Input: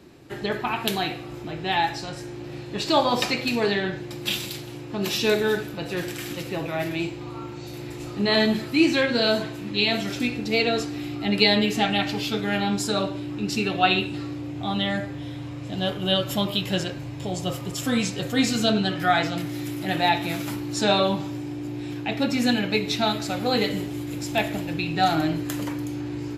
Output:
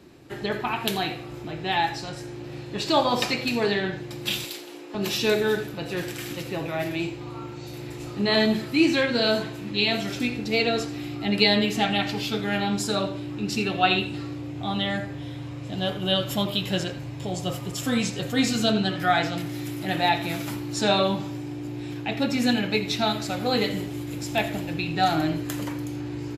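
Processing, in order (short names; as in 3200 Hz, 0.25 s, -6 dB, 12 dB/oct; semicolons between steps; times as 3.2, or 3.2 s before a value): 4.44–4.95 HPF 280 Hz 24 dB/oct; echo 83 ms -17 dB; gain -1 dB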